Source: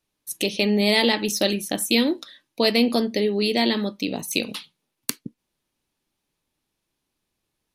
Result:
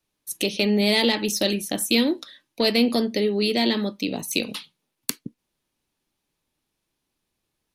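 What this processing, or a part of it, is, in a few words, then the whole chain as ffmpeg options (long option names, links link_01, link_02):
one-band saturation: -filter_complex "[0:a]acrossover=split=480|2300[link_01][link_02][link_03];[link_02]asoftclip=type=tanh:threshold=-23.5dB[link_04];[link_01][link_04][link_03]amix=inputs=3:normalize=0"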